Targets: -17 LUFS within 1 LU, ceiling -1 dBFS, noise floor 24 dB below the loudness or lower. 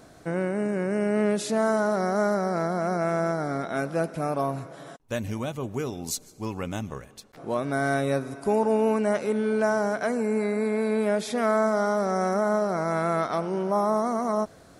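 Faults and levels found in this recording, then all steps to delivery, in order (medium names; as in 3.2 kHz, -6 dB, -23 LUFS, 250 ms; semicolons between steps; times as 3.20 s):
loudness -26.5 LUFS; peak level -12.0 dBFS; loudness target -17.0 LUFS
-> trim +9.5 dB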